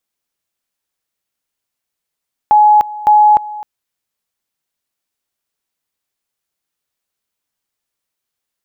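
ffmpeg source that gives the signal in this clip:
ffmpeg -f lavfi -i "aevalsrc='pow(10,(-4.5-18.5*gte(mod(t,0.56),0.3))/20)*sin(2*PI*843*t)':duration=1.12:sample_rate=44100" out.wav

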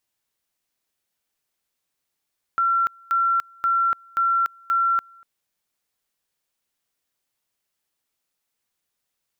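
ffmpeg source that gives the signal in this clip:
ffmpeg -f lavfi -i "aevalsrc='pow(10,(-17-29*gte(mod(t,0.53),0.29))/20)*sin(2*PI*1360*t)':duration=2.65:sample_rate=44100" out.wav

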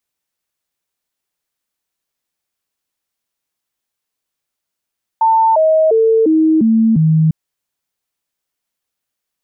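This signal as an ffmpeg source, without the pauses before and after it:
ffmpeg -f lavfi -i "aevalsrc='0.398*clip(min(mod(t,0.35),0.35-mod(t,0.35))/0.005,0,1)*sin(2*PI*895*pow(2,-floor(t/0.35)/2)*mod(t,0.35))':duration=2.1:sample_rate=44100" out.wav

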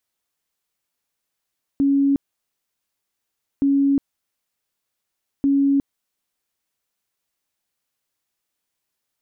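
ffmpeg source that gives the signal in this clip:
ffmpeg -f lavfi -i "aevalsrc='0.2*sin(2*PI*278*mod(t,1.82))*lt(mod(t,1.82),100/278)':duration=5.46:sample_rate=44100" out.wav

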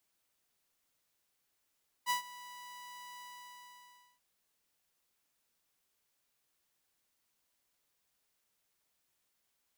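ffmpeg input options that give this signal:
ffmpeg -f lavfi -i "aevalsrc='0.0531*(2*mod(984*t,1)-1)':duration=2.14:sample_rate=44100,afade=type=in:duration=0.043,afade=type=out:start_time=0.043:duration=0.115:silence=0.106,afade=type=out:start_time=1.13:duration=1.01" out.wav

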